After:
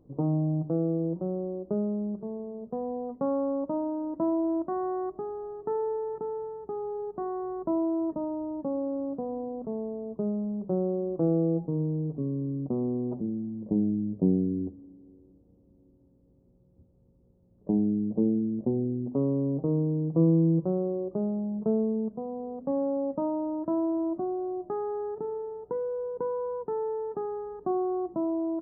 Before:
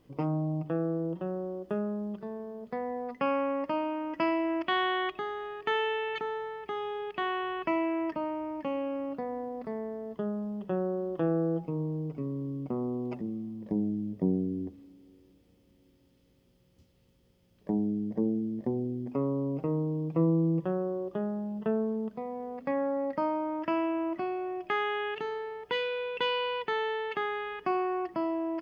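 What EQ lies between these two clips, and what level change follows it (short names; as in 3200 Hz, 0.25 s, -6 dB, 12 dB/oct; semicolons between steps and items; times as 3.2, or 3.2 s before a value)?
Gaussian blur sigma 11 samples; +4.5 dB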